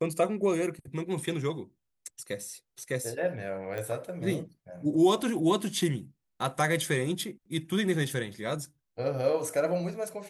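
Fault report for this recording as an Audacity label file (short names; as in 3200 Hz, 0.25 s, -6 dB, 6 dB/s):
3.780000	3.780000	pop -23 dBFS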